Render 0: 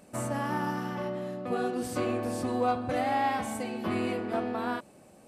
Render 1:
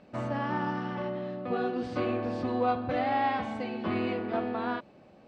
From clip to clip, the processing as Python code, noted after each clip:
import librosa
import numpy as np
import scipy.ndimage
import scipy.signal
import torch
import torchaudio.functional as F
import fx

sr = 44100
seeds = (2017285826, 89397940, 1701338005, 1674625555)

y = scipy.signal.sosfilt(scipy.signal.butter(4, 4300.0, 'lowpass', fs=sr, output='sos'), x)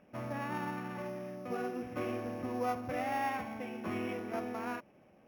y = np.r_[np.sort(x[:len(x) // 8 * 8].reshape(-1, 8), axis=1).ravel(), x[len(x) // 8 * 8:]]
y = fx.high_shelf_res(y, sr, hz=3200.0, db=-10.0, q=3.0)
y = y * librosa.db_to_amplitude(-7.0)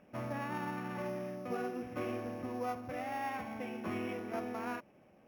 y = fx.rider(x, sr, range_db=10, speed_s=0.5)
y = y * librosa.db_to_amplitude(-1.5)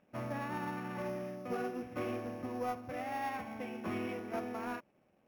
y = fx.leveller(x, sr, passes=1)
y = fx.upward_expand(y, sr, threshold_db=-48.0, expansion=1.5)
y = y * librosa.db_to_amplitude(-1.5)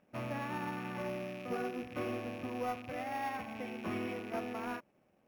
y = fx.rattle_buzz(x, sr, strikes_db=-50.0, level_db=-39.0)